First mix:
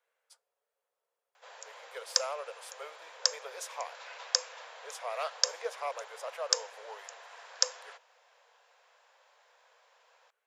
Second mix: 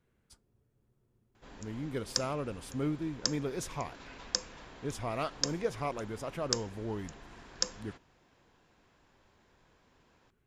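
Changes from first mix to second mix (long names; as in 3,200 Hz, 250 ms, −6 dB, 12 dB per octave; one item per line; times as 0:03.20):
background −4.5 dB
master: remove Butterworth high-pass 480 Hz 72 dB per octave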